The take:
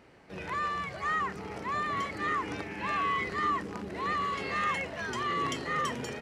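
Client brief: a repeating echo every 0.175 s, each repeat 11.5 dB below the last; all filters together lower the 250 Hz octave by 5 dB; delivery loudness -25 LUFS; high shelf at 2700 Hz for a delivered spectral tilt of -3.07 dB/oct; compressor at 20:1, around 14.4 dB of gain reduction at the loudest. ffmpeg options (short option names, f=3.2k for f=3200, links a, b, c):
-af "equalizer=f=250:t=o:g=-7,highshelf=f=2.7k:g=-7,acompressor=threshold=-42dB:ratio=20,aecho=1:1:175|350|525:0.266|0.0718|0.0194,volume=20dB"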